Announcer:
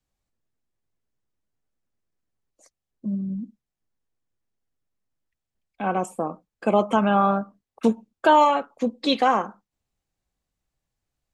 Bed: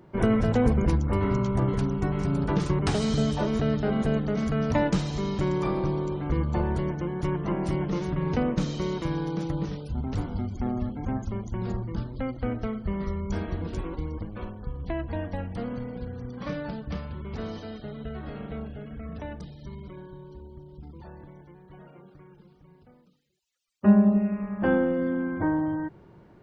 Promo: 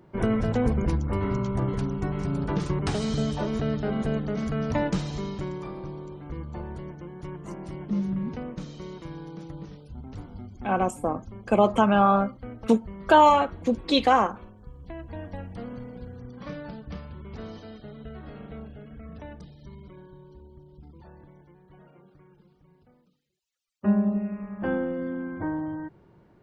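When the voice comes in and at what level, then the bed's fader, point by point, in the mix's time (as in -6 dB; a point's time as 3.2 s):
4.85 s, 0.0 dB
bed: 5.15 s -2 dB
5.68 s -10 dB
14.77 s -10 dB
15.32 s -4.5 dB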